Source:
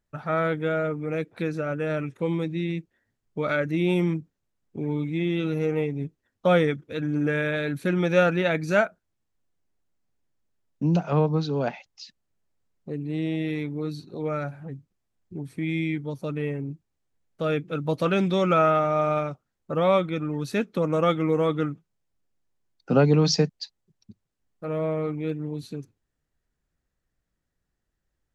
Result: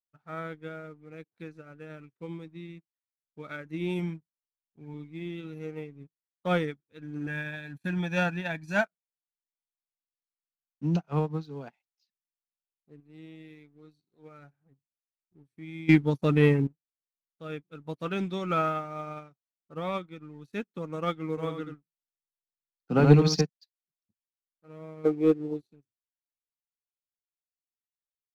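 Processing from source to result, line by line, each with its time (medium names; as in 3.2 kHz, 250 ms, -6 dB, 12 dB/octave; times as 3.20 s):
3.99–4.94 s: comb 1.3 ms, depth 37%
7.27–8.84 s: comb 1.2 ms, depth 68%
13.00–14.39 s: bass shelf 270 Hz -4.5 dB
15.89–16.67 s: gain +11 dB
21.29–23.41 s: delay 82 ms -4 dB
25.05–25.72 s: high-order bell 500 Hz +12.5 dB
whole clip: waveshaping leveller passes 1; peaking EQ 580 Hz -6.5 dB 0.41 oct; upward expansion 2.5:1, over -35 dBFS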